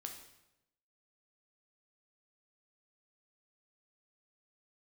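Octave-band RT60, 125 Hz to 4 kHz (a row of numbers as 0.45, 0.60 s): 1.1, 1.0, 0.95, 0.85, 0.80, 0.75 s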